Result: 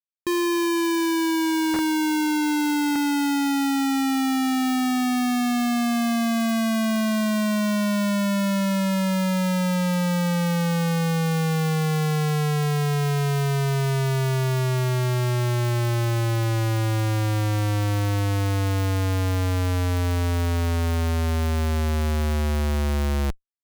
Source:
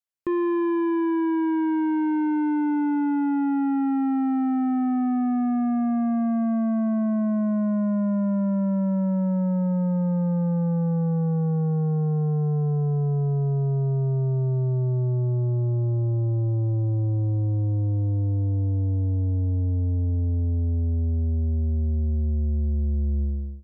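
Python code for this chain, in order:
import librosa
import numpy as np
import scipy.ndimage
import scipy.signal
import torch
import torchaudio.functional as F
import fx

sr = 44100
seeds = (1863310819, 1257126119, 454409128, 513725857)

y = fx.spec_box(x, sr, start_s=1.81, length_s=1.15, low_hz=240.0, high_hz=2000.0, gain_db=8)
y = fx.high_shelf_res(y, sr, hz=1500.0, db=13.5, q=3.0)
y = fx.schmitt(y, sr, flips_db=-23.5)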